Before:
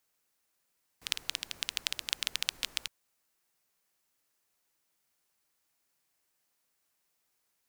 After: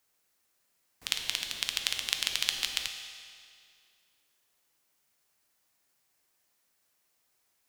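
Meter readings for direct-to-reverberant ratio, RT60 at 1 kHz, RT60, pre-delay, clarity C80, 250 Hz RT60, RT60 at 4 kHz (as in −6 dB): 4.0 dB, 2.2 s, 2.2 s, 6 ms, 7.0 dB, 2.2 s, 2.1 s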